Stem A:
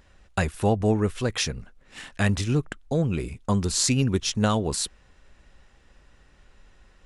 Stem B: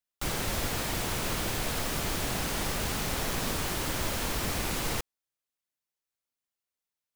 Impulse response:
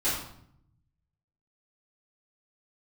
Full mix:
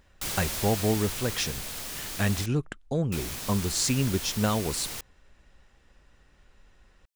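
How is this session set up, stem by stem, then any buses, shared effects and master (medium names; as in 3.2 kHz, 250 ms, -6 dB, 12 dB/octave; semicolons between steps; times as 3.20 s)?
-3.5 dB, 0.00 s, no send, none
-5.5 dB, 0.00 s, muted 2.46–3.12 s, no send, treble shelf 2.3 kHz +11 dB; auto duck -6 dB, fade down 1.60 s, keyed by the first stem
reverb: none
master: none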